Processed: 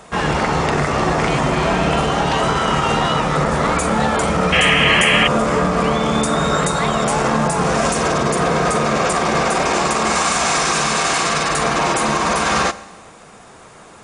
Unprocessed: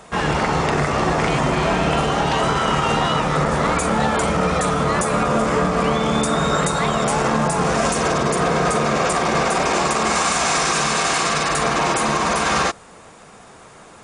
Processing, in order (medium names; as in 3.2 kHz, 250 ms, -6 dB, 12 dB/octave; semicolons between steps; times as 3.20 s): Schroeder reverb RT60 1.2 s, combs from 29 ms, DRR 17 dB; painted sound noise, 4.52–5.28 s, 1.6–3.3 kHz -17 dBFS; trim +1.5 dB